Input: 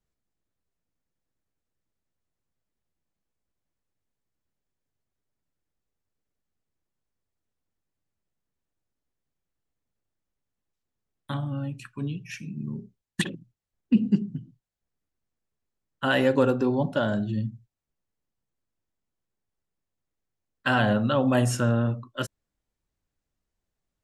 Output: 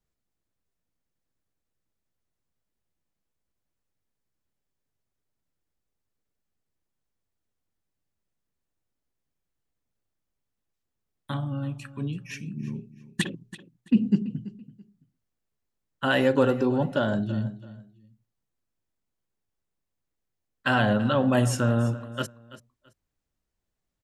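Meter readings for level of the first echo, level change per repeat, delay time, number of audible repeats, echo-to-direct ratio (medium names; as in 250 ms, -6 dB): -16.5 dB, -12.5 dB, 333 ms, 2, -16.0 dB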